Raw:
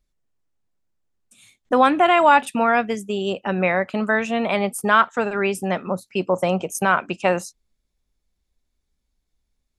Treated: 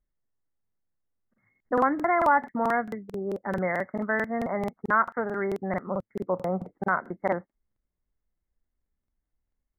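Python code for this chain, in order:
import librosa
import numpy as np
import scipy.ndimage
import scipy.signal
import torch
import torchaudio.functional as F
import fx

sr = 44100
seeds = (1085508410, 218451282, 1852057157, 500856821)

y = fx.brickwall_lowpass(x, sr, high_hz=2200.0)
y = fx.buffer_crackle(y, sr, first_s=0.63, period_s=0.22, block=2048, kind='repeat')
y = y * librosa.db_to_amplitude(-7.0)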